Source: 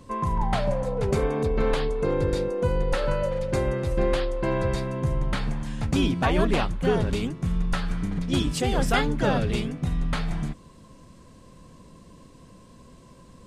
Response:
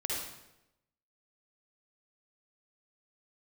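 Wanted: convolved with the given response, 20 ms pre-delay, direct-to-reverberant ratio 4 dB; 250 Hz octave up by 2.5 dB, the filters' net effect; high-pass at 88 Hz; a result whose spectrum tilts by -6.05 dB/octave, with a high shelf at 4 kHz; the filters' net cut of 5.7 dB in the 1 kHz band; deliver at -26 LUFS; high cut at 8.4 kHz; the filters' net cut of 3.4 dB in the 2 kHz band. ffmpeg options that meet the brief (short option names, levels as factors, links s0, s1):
-filter_complex "[0:a]highpass=88,lowpass=8400,equalizer=f=250:t=o:g=4,equalizer=f=1000:t=o:g=-7.5,equalizer=f=2000:t=o:g=-3,highshelf=f=4000:g=4.5,asplit=2[s0][s1];[1:a]atrim=start_sample=2205,adelay=20[s2];[s1][s2]afir=irnorm=-1:irlink=0,volume=0.376[s3];[s0][s3]amix=inputs=2:normalize=0,volume=0.841"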